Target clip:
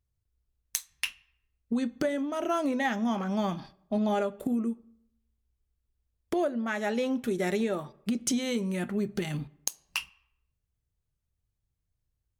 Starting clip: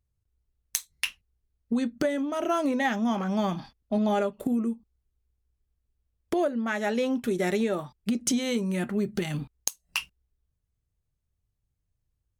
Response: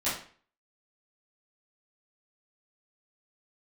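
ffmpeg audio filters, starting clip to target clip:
-filter_complex "[0:a]asplit=2[a][b];[1:a]atrim=start_sample=2205,asetrate=26019,aresample=44100[c];[b][c]afir=irnorm=-1:irlink=0,volume=-32.5dB[d];[a][d]amix=inputs=2:normalize=0,volume=-2.5dB"

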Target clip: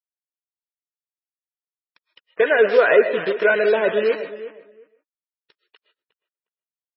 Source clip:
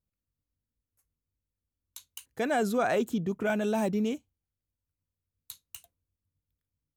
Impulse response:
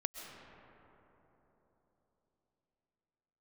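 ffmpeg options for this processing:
-filter_complex "[0:a]aecho=1:1:2:0.59,acrossover=split=2400[a][b];[a]dynaudnorm=f=460:g=7:m=13.5dB[c];[c][b]amix=inputs=2:normalize=0,aeval=exprs='sgn(val(0))*max(abs(val(0))-0.0133,0)':c=same,acrusher=bits=5:dc=4:mix=0:aa=0.000001,highpass=410,equalizer=f=450:t=q:w=4:g=6,equalizer=f=840:t=q:w=4:g=-9,equalizer=f=1.8k:t=q:w=4:g=9,equalizer=f=2.6k:t=q:w=4:g=4,equalizer=f=4.5k:t=q:w=4:g=-5,lowpass=f=5.9k:w=0.5412,lowpass=f=5.9k:w=1.3066,asplit=2[d][e];[e]adelay=359,lowpass=f=2k:p=1,volume=-14dB,asplit=2[f][g];[g]adelay=359,lowpass=f=2k:p=1,volume=0.17[h];[d][f][h]amix=inputs=3:normalize=0[i];[1:a]atrim=start_sample=2205,afade=t=out:st=0.21:d=0.01,atrim=end_sample=9702[j];[i][j]afir=irnorm=-1:irlink=0" -ar 22050 -c:a libmp3lame -b:a 16k

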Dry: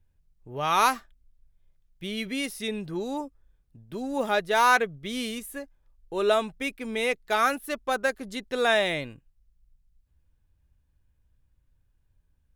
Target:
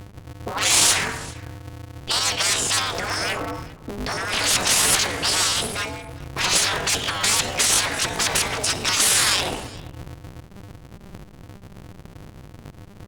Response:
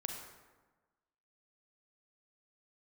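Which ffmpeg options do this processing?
-filter_complex "[0:a]asetrate=42336,aresample=44100,aresample=16000,aeval=exprs='0.376*sin(PI/2*6.31*val(0)/0.376)':c=same,aresample=44100,aeval=exprs='0.631*(cos(1*acos(clip(val(0)/0.631,-1,1)))-cos(1*PI/2))+0.0316*(cos(5*acos(clip(val(0)/0.631,-1,1)))-cos(5*PI/2))':c=same,asplit=2[a][b];[1:a]atrim=start_sample=2205,afade=t=out:st=0.41:d=0.01,atrim=end_sample=18522[c];[b][c]afir=irnorm=-1:irlink=0,volume=-9dB[d];[a][d]amix=inputs=2:normalize=0,adynamicequalizer=threshold=0.0355:dfrequency=1200:dqfactor=6:tfrequency=1200:tqfactor=6:attack=5:release=100:ratio=0.375:range=2.5:mode=boostabove:tftype=bell,afftfilt=real='re*lt(hypot(re,im),0.501)':imag='im*lt(hypot(re,im),0.501)':win_size=1024:overlap=0.75,aecho=1:1:399:0.0794,asetrate=62367,aresample=44100,atempo=0.707107,afftfilt=real='re*gte(hypot(re,im),0.00251)':imag='im*gte(hypot(re,im),0.00251)':win_size=1024:overlap=0.75,aeval=exprs='val(0)*sgn(sin(2*PI*100*n/s))':c=same"

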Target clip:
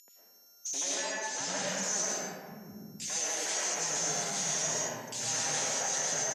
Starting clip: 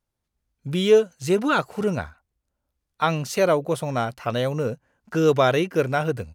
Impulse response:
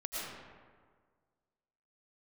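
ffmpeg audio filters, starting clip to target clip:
-filter_complex "[0:a]asettb=1/sr,asplit=3[a][b][c];[a]atrim=end=4.204[d];[b]atrim=start=4.2:end=5.27,asetpts=PTS-STARTPTS,afade=t=in:d=0.004:c=qsin,afade=t=out:st=1.066:d=0.004:c=qsin,tiltshelf=f=1.2k:g=-6[e];[c]atrim=start=5.266[f];[d][e]acrossfade=d=0.004:c1=hsin:c2=qsin[g];[g][f]acrossfade=d=0.004:c1=qsin:c2=hsin,acompressor=threshold=-32dB:ratio=4,aeval=exprs='(mod(28.2*val(0)+1,2)-1)/28.2':c=same,aeval=exprs='val(0)+0.0126*sin(2*PI*6200*n/s)':c=same,aeval=exprs='abs(val(0))':c=same,asettb=1/sr,asplit=3[h][i][j];[h]atrim=end=0.834[k];[i]atrim=start=0.83:end=1.68,asetpts=PTS-STARTPTS,afade=t=in:d=0.004:c=qsin,afade=t=out:st=0.846:d=0.004:c=qsin,adynamicsmooth=sensitivity=5.5:basefreq=6.6k[l];[j]atrim=start=1.676[m];[k][l]acrossfade=d=0.004:c1=hsin:c2=qsin[n];[n][m]acrossfade=d=0.004:c1=qsin:c2=hsin,highpass=f=130:w=0.5412,highpass=f=130:w=1.3066,equalizer=f=130:t=q:w=4:g=-8,equalizer=f=320:t=q:w=4:g=-10,equalizer=f=1.2k:t=q:w=4:g=-9,equalizer=f=1.8k:t=q:w=4:g=4,equalizer=f=6.6k:t=q:w=4:g=7,lowpass=f=8.7k:w=0.5412,lowpass=f=8.7k:w=1.3066,acrossover=split=280|2500[o][p][q];[p]adelay=80[r];[o]adelay=730[s];[s][r][q]amix=inputs=3:normalize=0[t];[1:a]atrim=start_sample=2205[u];[t][u]afir=irnorm=-1:irlink=0,volume=5.5dB"

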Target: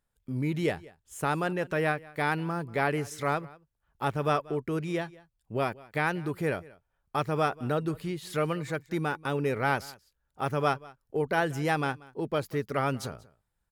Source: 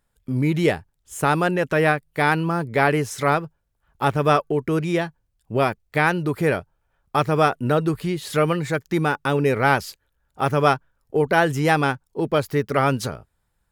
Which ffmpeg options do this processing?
-af "aecho=1:1:186:0.0794,volume=-9dB"

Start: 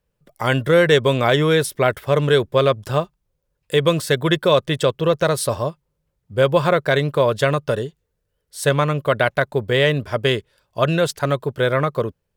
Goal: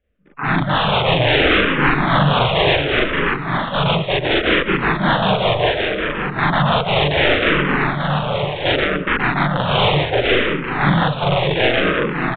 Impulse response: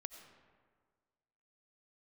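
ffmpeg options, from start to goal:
-filter_complex "[0:a]asplit=3[a][b][c];[b]asetrate=52444,aresample=44100,atempo=0.840896,volume=-10dB[d];[c]asetrate=55563,aresample=44100,atempo=0.793701,volume=-3dB[e];[a][d][e]amix=inputs=3:normalize=0,aeval=exprs='(mod(2.99*val(0)+1,2)-1)/2.99':c=same,aecho=1:1:580|928|1137|1262|1337:0.631|0.398|0.251|0.158|0.1,asplit=2[f][g];[1:a]atrim=start_sample=2205,afade=t=out:st=0.16:d=0.01,atrim=end_sample=7497,adelay=41[h];[g][h]afir=irnorm=-1:irlink=0,volume=5.5dB[i];[f][i]amix=inputs=2:normalize=0,aresample=8000,aresample=44100,asplit=2[j][k];[k]afreqshift=-0.68[l];[j][l]amix=inputs=2:normalize=1"

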